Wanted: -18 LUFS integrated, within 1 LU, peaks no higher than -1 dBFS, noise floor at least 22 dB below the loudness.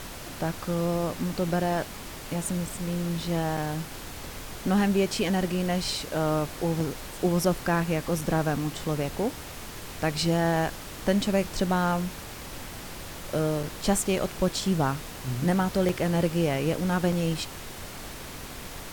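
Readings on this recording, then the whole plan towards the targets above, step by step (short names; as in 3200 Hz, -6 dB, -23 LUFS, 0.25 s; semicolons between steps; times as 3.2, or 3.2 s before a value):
dropouts 6; longest dropout 3.8 ms; noise floor -40 dBFS; noise floor target -50 dBFS; loudness -27.5 LUFS; peak -9.5 dBFS; loudness target -18.0 LUFS
-> interpolate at 3.57/6.8/8.21/13.63/15.89/17.12, 3.8 ms; noise print and reduce 10 dB; gain +9.5 dB; limiter -1 dBFS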